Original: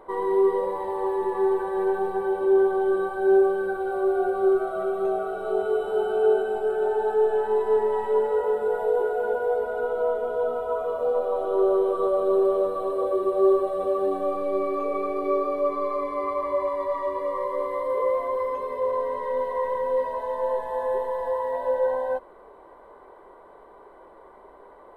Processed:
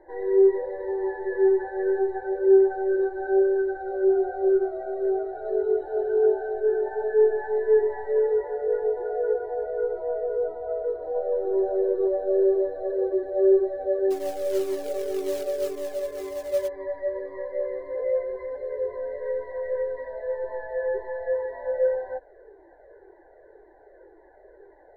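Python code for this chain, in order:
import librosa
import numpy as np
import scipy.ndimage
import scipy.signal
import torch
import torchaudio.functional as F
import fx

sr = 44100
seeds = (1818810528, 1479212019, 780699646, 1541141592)

y = fx.curve_eq(x, sr, hz=(120.0, 210.0, 340.0, 550.0, 830.0, 1200.0, 1700.0, 2800.0, 4300.0, 6200.0), db=(0, -21, 7, 3, -1, -27, 12, -29, -5, -23))
y = fx.quant_float(y, sr, bits=2, at=(14.1, 16.67), fade=0.02)
y = fx.comb_cascade(y, sr, direction='falling', hz=1.9)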